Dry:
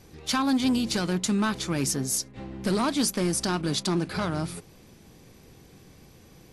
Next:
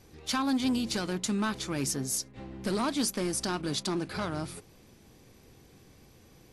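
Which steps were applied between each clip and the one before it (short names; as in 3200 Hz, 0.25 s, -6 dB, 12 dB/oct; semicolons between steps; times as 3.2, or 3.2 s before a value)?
bell 170 Hz -6 dB 0.23 oct; gain -4 dB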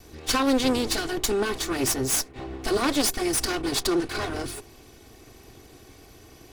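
minimum comb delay 2.7 ms; gain +9 dB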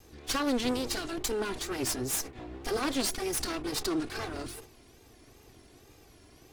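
wow and flutter 140 cents; sustainer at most 140 dB/s; gain -7 dB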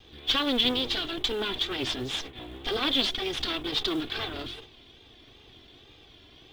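synth low-pass 3400 Hz, resonance Q 8.1; in parallel at -4 dB: short-mantissa float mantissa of 2-bit; on the sum: gain -4 dB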